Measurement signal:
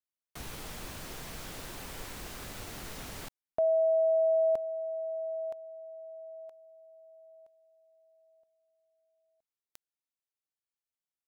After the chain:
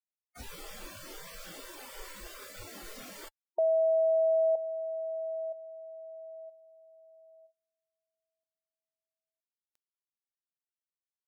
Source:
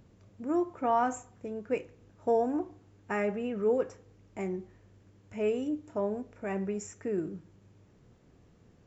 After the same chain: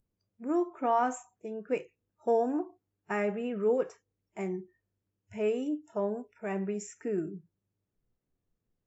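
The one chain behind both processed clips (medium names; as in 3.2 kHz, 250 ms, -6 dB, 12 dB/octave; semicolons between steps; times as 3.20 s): spectral noise reduction 25 dB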